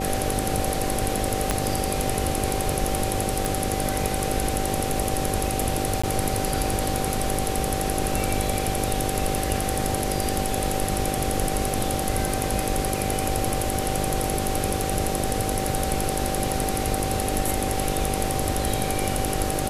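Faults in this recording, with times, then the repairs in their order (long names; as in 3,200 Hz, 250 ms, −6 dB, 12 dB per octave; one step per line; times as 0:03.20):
mains buzz 50 Hz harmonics 12 −30 dBFS
whistle 770 Hz −30 dBFS
0:01.51: click −6 dBFS
0:03.45: click
0:06.02–0:06.04: drop-out 15 ms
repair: click removal
hum removal 50 Hz, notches 12
notch filter 770 Hz, Q 30
repair the gap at 0:06.02, 15 ms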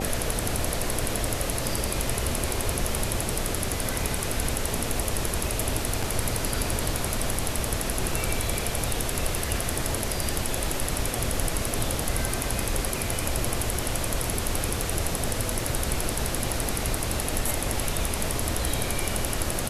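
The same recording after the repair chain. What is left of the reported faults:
0:01.51: click
0:03.45: click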